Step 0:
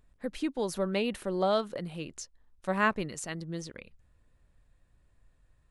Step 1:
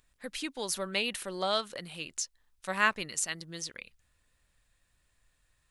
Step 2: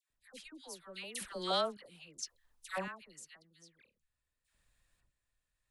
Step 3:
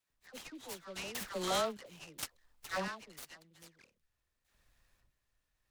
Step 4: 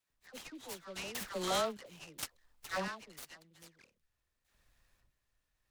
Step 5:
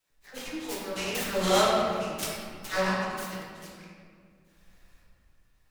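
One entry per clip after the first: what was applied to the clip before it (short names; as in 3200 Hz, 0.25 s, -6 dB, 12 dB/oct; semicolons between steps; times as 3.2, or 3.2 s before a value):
tilt shelf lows -9 dB, about 1200 Hz
random-step tremolo 1.8 Hz, depth 90%; dispersion lows, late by 0.105 s, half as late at 1200 Hz; gain -2.5 dB
in parallel at +1 dB: limiter -33 dBFS, peak gain reduction 12 dB; on the sum: noise-modulated delay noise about 2700 Hz, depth 0.04 ms; gain -3 dB
nothing audible
reverb RT60 2.0 s, pre-delay 6 ms, DRR -5.5 dB; gain +5 dB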